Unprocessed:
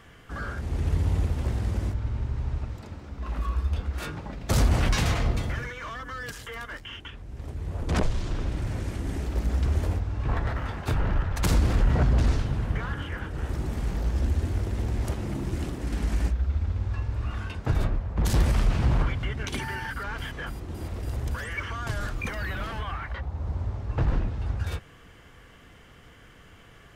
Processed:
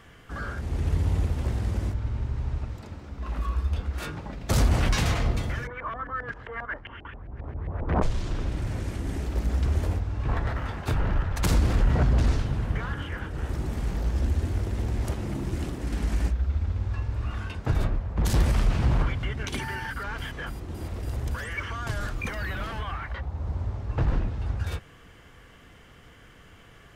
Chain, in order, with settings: 5.67–8.02 LFO low-pass saw up 7.5 Hz 640–2200 Hz

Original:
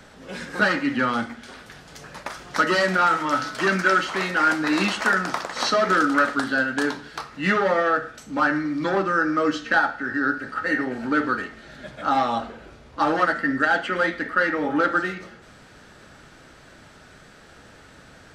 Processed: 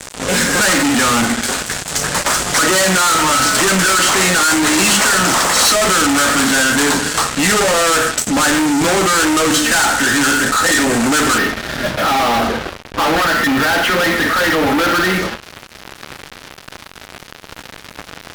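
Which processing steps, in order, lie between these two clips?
notches 50/100/150/200/250/300/350 Hz; fuzz box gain 44 dB, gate -43 dBFS; bell 7900 Hz +10.5 dB 0.76 oct, from 11.38 s -5 dB

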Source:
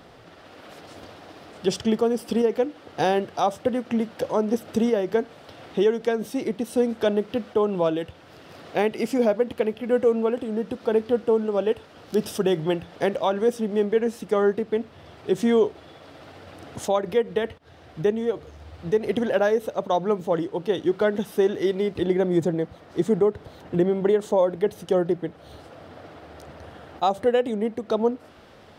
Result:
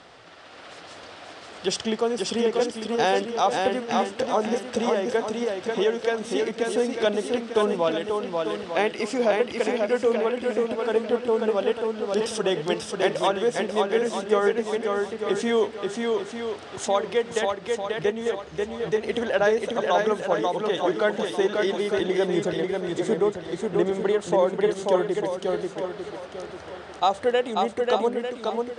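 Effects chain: steep low-pass 9300 Hz 48 dB/oct; low shelf 490 Hz -12 dB; swung echo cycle 0.897 s, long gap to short 1.5:1, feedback 30%, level -3.5 dB; gain +4 dB

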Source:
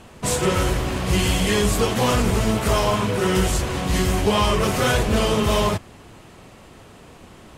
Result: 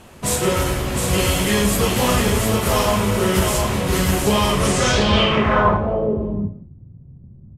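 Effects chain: echo 0.71 s -4.5 dB; low-pass sweep 13000 Hz -> 140 Hz, 4.53–6.7; non-linear reverb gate 0.24 s falling, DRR 6 dB

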